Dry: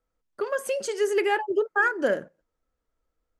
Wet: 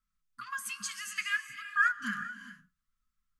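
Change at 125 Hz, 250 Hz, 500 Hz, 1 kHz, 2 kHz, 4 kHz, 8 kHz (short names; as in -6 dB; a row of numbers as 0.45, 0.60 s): n/a, -11.5 dB, under -40 dB, -7.0 dB, -2.5 dB, -1.5 dB, -0.5 dB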